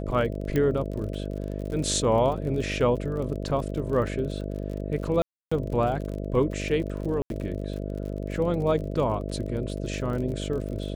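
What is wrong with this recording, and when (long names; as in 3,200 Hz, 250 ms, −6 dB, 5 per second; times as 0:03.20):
mains buzz 50 Hz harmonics 13 −32 dBFS
surface crackle 39 per second −34 dBFS
0:00.56: click −14 dBFS
0:05.22–0:05.51: drop-out 295 ms
0:07.22–0:07.30: drop-out 82 ms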